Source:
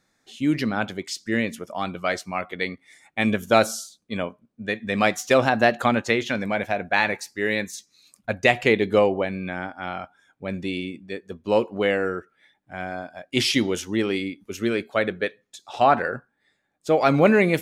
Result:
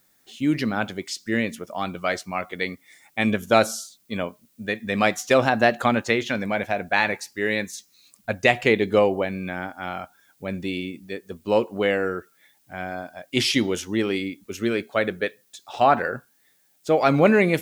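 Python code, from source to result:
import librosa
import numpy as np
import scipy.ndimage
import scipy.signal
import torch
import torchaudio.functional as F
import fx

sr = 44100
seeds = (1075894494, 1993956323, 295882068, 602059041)

y = fx.dmg_noise_colour(x, sr, seeds[0], colour='blue', level_db=-64.0)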